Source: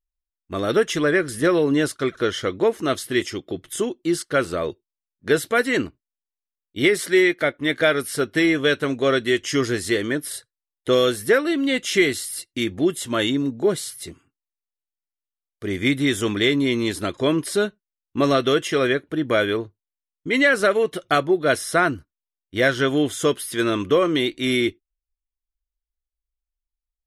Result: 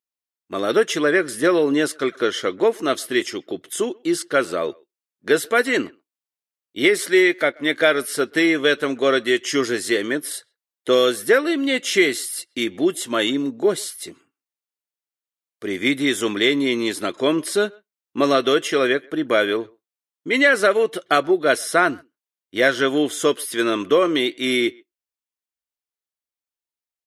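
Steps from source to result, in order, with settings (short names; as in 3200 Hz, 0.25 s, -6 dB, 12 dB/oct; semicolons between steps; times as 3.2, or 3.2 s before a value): HPF 250 Hz 12 dB/oct; speakerphone echo 0.13 s, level -27 dB; gain +2 dB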